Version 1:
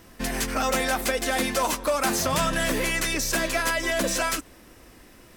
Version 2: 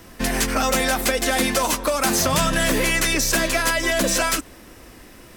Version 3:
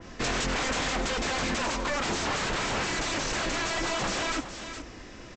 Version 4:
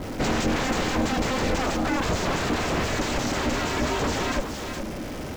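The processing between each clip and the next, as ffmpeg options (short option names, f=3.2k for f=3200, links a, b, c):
-filter_complex "[0:a]acrossover=split=270|3000[a][b][c];[b]acompressor=threshold=-25dB:ratio=6[d];[a][d][c]amix=inputs=3:normalize=0,volume=6dB"
-af "aresample=16000,aeval=exprs='0.0708*(abs(mod(val(0)/0.0708+3,4)-2)-1)':c=same,aresample=44100,aecho=1:1:415:0.266,adynamicequalizer=threshold=0.00891:dfrequency=2600:dqfactor=0.7:tfrequency=2600:tqfactor=0.7:attack=5:release=100:ratio=0.375:range=3:mode=cutabove:tftype=highshelf"
-af "aeval=exprs='val(0)+0.5*0.0188*sgn(val(0))':c=same,aeval=exprs='val(0)*sin(2*PI*270*n/s)':c=same,tiltshelf=f=780:g=4.5,volume=5dB"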